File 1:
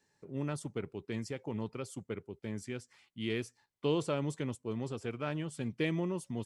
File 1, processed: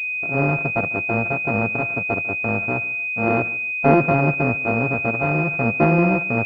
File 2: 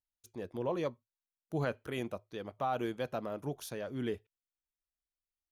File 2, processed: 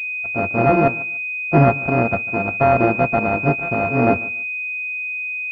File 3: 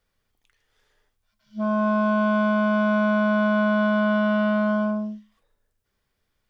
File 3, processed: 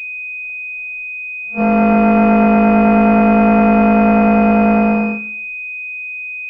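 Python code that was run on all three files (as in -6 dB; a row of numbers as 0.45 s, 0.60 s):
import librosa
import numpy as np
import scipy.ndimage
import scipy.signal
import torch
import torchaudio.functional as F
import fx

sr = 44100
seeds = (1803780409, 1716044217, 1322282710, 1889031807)

y = np.r_[np.sort(x[:len(x) // 64 * 64].reshape(-1, 64), axis=1).ravel(), x[len(x) // 64 * 64:]]
y = fx.dynamic_eq(y, sr, hz=230.0, q=0.87, threshold_db=-36.0, ratio=4.0, max_db=3)
y = fx.echo_feedback(y, sr, ms=146, feedback_pct=22, wet_db=-19.5)
y = fx.pwm(y, sr, carrier_hz=2500.0)
y = librosa.util.normalize(y) * 10.0 ** (-2 / 20.0)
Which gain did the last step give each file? +16.0 dB, +20.5 dB, +9.5 dB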